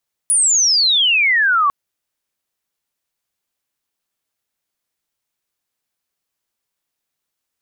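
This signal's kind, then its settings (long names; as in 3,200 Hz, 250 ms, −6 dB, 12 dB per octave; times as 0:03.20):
glide logarithmic 10,000 Hz → 1,100 Hz −11 dBFS → −11.5 dBFS 1.40 s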